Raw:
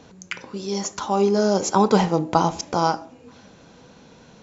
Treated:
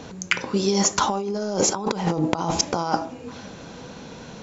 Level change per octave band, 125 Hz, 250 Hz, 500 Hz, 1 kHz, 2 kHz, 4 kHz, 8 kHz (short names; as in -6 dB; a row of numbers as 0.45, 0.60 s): -1.5 dB, -2.0 dB, -4.0 dB, -3.5 dB, +4.0 dB, +4.0 dB, n/a